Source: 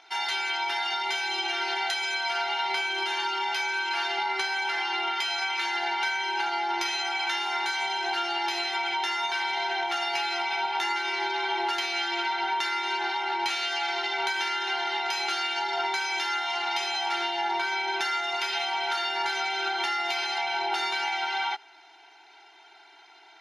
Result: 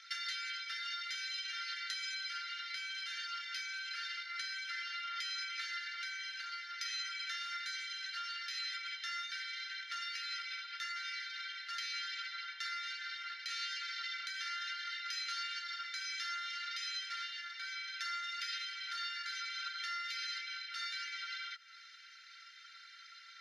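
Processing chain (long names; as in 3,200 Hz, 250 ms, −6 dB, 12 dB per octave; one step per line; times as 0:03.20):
downward compressor, threshold −37 dBFS, peak gain reduction 12.5 dB
Chebyshev high-pass with heavy ripple 1,300 Hz, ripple 9 dB
level +5 dB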